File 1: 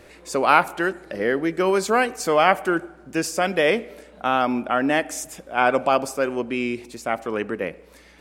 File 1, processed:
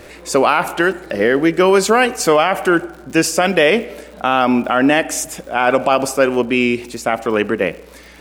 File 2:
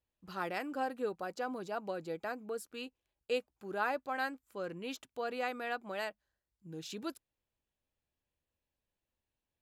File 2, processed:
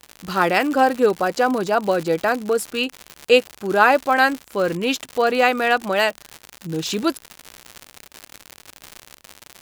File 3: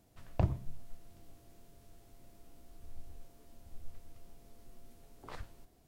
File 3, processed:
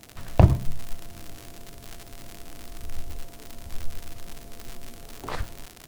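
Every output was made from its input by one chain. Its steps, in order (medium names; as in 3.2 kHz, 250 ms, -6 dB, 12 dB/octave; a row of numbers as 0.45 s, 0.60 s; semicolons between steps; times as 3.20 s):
peak limiter -12.5 dBFS; crackle 130 per s -42 dBFS; dynamic bell 2.8 kHz, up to +5 dB, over -50 dBFS, Q 5.9; peak normalisation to -1.5 dBFS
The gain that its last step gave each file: +9.5 dB, +19.5 dB, +14.5 dB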